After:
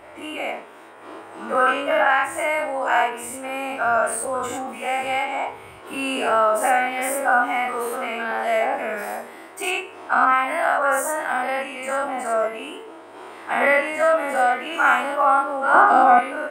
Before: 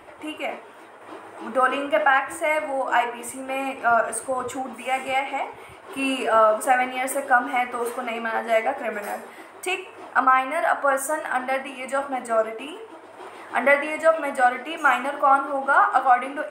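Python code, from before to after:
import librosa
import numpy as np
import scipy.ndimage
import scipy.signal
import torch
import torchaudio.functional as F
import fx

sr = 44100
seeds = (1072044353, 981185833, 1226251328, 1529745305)

y = fx.spec_dilate(x, sr, span_ms=120)
y = fx.peak_eq(y, sr, hz=260.0, db=14.0, octaves=1.8, at=(15.74, 16.19))
y = y * 10.0 ** (-4.0 / 20.0)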